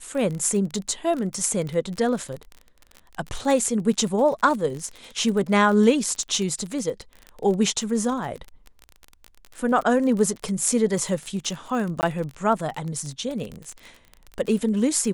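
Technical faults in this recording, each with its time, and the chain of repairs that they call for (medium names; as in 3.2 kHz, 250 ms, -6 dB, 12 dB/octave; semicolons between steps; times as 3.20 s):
crackle 30 per s -28 dBFS
12.01–12.03 s: dropout 19 ms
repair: de-click; interpolate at 12.01 s, 19 ms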